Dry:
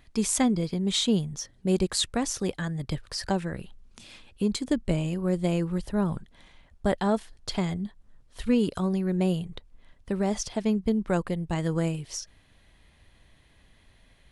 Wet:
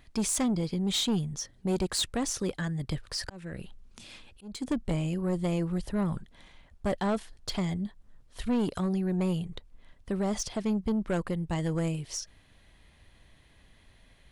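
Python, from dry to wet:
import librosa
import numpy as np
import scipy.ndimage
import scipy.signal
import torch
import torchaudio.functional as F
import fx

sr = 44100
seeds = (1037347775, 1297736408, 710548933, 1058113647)

y = 10.0 ** (-22.5 / 20.0) * np.tanh(x / 10.0 ** (-22.5 / 20.0))
y = fx.auto_swell(y, sr, attack_ms=362.0, at=(3.24, 4.61), fade=0.02)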